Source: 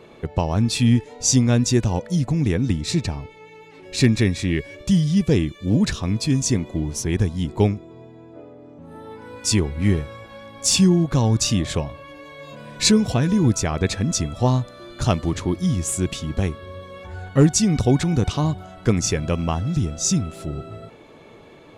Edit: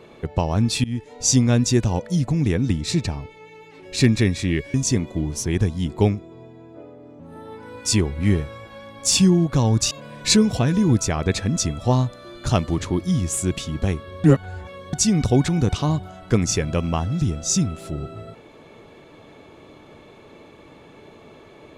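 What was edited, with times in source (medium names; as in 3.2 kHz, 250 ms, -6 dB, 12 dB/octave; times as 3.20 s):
0.84–1.20 s: fade in, from -23 dB
4.74–6.33 s: delete
11.50–12.46 s: delete
16.79–17.48 s: reverse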